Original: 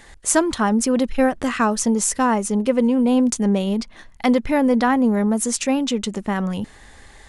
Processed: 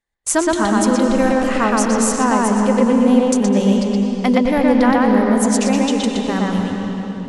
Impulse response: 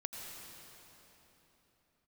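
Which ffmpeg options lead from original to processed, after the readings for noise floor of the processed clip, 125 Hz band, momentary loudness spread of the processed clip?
−28 dBFS, can't be measured, 6 LU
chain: -filter_complex "[0:a]agate=range=-38dB:threshold=-33dB:ratio=16:detection=peak,asplit=2[link_01][link_02];[1:a]atrim=start_sample=2205,lowpass=5200,adelay=120[link_03];[link_02][link_03]afir=irnorm=-1:irlink=0,volume=2.5dB[link_04];[link_01][link_04]amix=inputs=2:normalize=0"

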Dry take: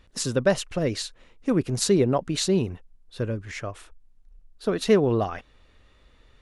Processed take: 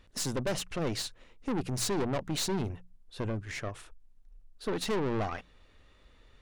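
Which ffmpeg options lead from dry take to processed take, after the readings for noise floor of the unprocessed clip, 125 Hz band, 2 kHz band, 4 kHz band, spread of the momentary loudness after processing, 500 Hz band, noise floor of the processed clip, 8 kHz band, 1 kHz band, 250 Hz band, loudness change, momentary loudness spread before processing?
−58 dBFS, −7.5 dB, −5.5 dB, −5.0 dB, 11 LU, −11.0 dB, −61 dBFS, −5.5 dB, −4.5 dB, −9.0 dB, −8.5 dB, 15 LU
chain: -af "aeval=exprs='(tanh(25.1*val(0)+0.55)-tanh(0.55))/25.1':channel_layout=same,bandreject=frequency=60:width_type=h:width=6,bandreject=frequency=120:width_type=h:width=6,bandreject=frequency=180:width_type=h:width=6"

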